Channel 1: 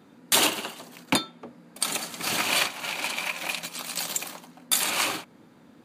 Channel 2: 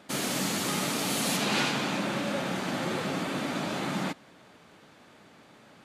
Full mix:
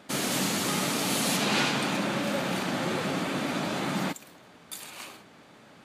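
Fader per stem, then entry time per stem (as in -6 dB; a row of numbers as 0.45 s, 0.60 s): -17.0 dB, +1.5 dB; 0.00 s, 0.00 s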